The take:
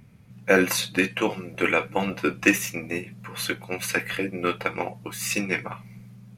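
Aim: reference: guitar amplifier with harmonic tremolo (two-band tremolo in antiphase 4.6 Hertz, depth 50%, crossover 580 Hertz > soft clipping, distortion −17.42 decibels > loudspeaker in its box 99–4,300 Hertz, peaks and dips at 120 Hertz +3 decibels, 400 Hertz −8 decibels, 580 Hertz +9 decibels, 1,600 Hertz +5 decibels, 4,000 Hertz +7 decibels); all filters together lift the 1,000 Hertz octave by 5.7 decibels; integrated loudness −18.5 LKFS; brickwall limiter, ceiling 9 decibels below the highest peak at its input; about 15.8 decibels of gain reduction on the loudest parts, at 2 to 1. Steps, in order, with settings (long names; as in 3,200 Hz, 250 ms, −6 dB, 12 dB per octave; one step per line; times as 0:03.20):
parametric band 1,000 Hz +6 dB
downward compressor 2 to 1, threshold −42 dBFS
brickwall limiter −24 dBFS
two-band tremolo in antiphase 4.6 Hz, depth 50%, crossover 580 Hz
soft clipping −30.5 dBFS
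loudspeaker in its box 99–4,300 Hz, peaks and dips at 120 Hz +3 dB, 400 Hz −8 dB, 580 Hz +9 dB, 1,600 Hz +5 dB, 4,000 Hz +7 dB
level +22.5 dB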